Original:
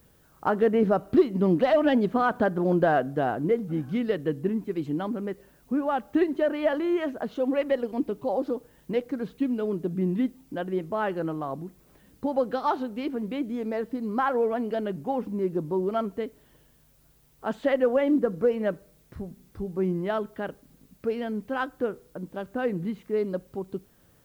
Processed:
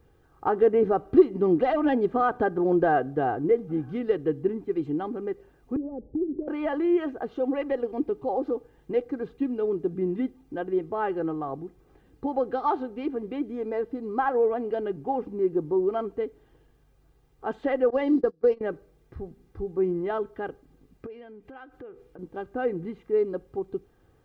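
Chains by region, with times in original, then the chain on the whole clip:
0:05.76–0:06.48: Chebyshev low-pass filter 540 Hz, order 4 + downward compressor 3 to 1, threshold −34 dBFS + low-shelf EQ 300 Hz +9.5 dB
0:17.90–0:18.61: noise gate −28 dBFS, range −26 dB + parametric band 4,600 Hz +14.5 dB 0.68 octaves
0:21.06–0:22.19: parametric band 2,400 Hz +5.5 dB 0.93 octaves + downward compressor 4 to 1, threshold −43 dBFS
whole clip: low-pass filter 3,600 Hz 6 dB per octave; high-shelf EQ 2,100 Hz −8.5 dB; comb filter 2.5 ms, depth 58%

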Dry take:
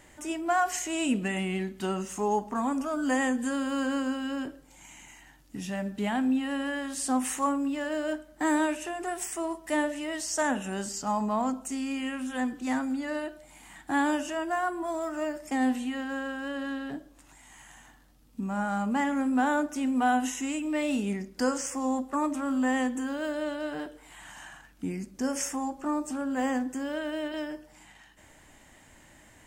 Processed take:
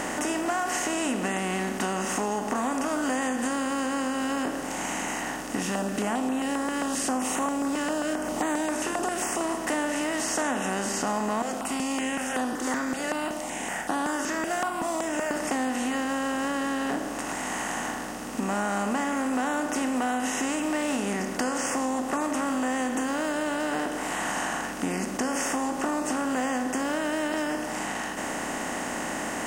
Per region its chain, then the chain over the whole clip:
0:05.62–0:09.41: parametric band 1,900 Hz −8 dB 0.59 octaves + upward compression, threshold −35 dBFS + notch on a step sequencer 7.5 Hz 690–5,000 Hz
0:11.42–0:15.31: low-shelf EQ 440 Hz −8.5 dB + step-sequenced phaser 5.3 Hz 270–7,300 Hz
whole clip: compressor on every frequency bin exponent 0.4; downward compressor, threshold −24 dBFS

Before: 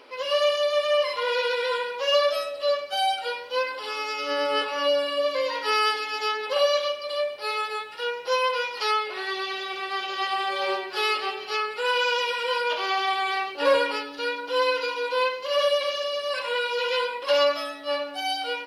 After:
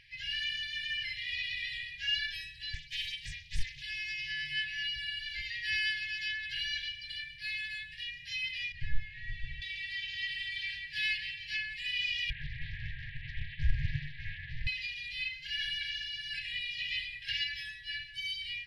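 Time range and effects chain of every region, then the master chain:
0:02.74–0:03.82: Butterworth band-reject 1,300 Hz, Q 0.7 + highs frequency-modulated by the lows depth 0.52 ms
0:08.72–0:09.62: linear delta modulator 64 kbit/s, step −42.5 dBFS + head-to-tape spacing loss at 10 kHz 33 dB
0:12.30–0:14.67: linear delta modulator 16 kbit/s, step −39.5 dBFS + Butterworth high-pass 240 Hz + highs frequency-modulated by the lows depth 0.88 ms
whole clip: RIAA equalisation playback; brick-wall band-stop 160–1,600 Hz; dynamic equaliser 7,500 Hz, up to −5 dB, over −46 dBFS, Q 0.92

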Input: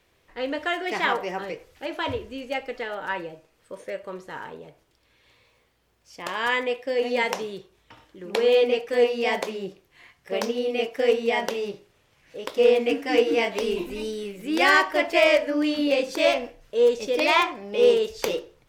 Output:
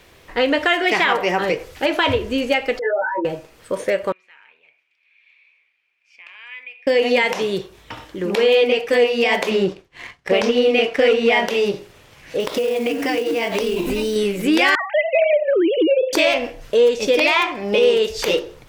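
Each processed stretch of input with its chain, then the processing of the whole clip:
0:02.79–0:03.25: expanding power law on the bin magnitudes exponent 3.5 + compressor whose output falls as the input rises −33 dBFS + micro pitch shift up and down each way 27 cents
0:04.12–0:06.87: downward compressor 2 to 1, threshold −43 dBFS + resonant band-pass 2,400 Hz, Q 12
0:09.51–0:11.47: downward expander −57 dBFS + high-frequency loss of the air 59 metres + leveller curve on the samples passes 1
0:12.40–0:14.16: parametric band 140 Hz +5.5 dB 0.5 octaves + downward compressor 10 to 1, threshold −32 dBFS + log-companded quantiser 6 bits
0:14.75–0:16.13: three sine waves on the formant tracks + high-pass with resonance 360 Hz, resonance Q 2 + downward compressor 3 to 1, threshold −25 dBFS
whole clip: dynamic equaliser 2,500 Hz, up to +5 dB, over −38 dBFS, Q 1.1; downward compressor 3 to 1, threshold −31 dBFS; boost into a limiter +21 dB; level −5.5 dB

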